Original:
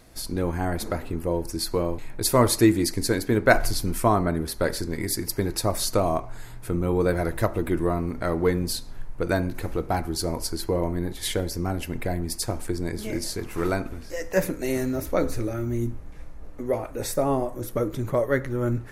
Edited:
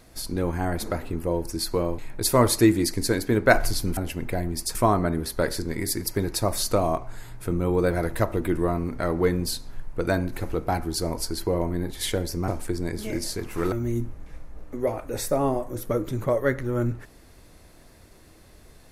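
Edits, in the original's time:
11.7–12.48 move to 3.97
13.72–15.58 cut

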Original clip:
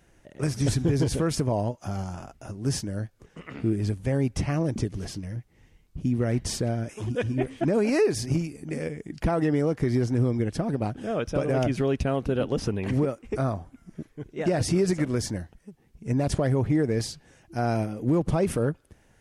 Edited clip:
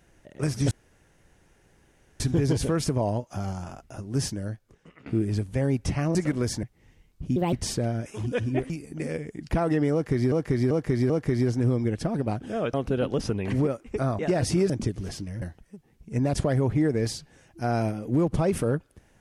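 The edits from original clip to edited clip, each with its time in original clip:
0.71 insert room tone 1.49 s
2.85–3.57 fade out, to -15.5 dB
4.66–5.38 swap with 14.88–15.36
6.11–6.36 speed 149%
7.53–8.41 cut
9.64–10.03 loop, 4 plays
11.28–12.12 cut
13.57–14.37 cut

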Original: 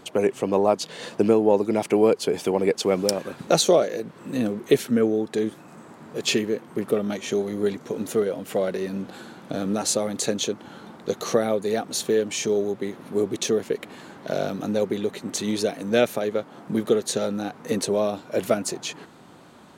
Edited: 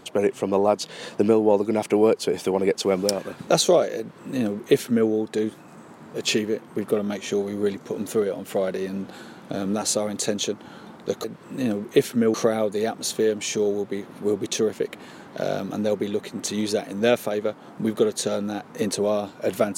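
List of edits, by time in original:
3.99–5.09 copy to 11.24

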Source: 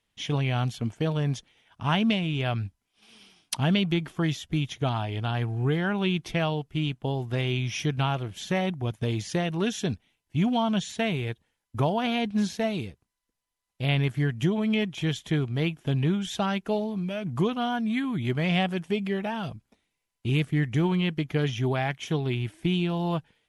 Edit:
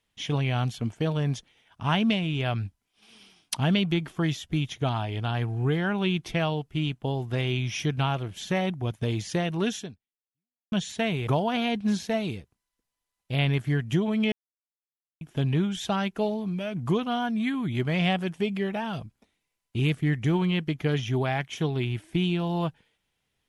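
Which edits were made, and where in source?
9.76–10.72 fade out exponential
11.27–11.77 cut
14.82–15.71 mute

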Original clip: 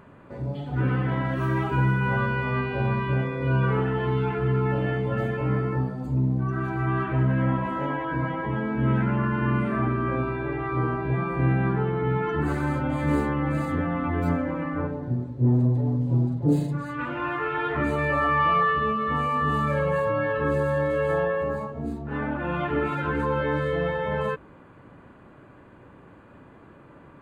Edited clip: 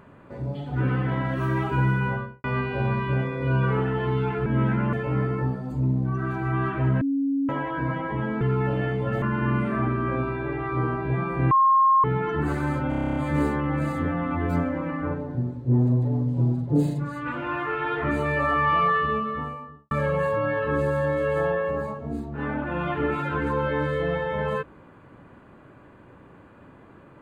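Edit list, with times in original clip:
1.98–2.44 studio fade out
4.46–5.27 swap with 8.75–9.22
7.35–7.83 bleep 276 Hz -21 dBFS
11.51–12.04 bleep 1070 Hz -14.5 dBFS
12.89 stutter 0.03 s, 10 plays
18.77–19.64 studio fade out

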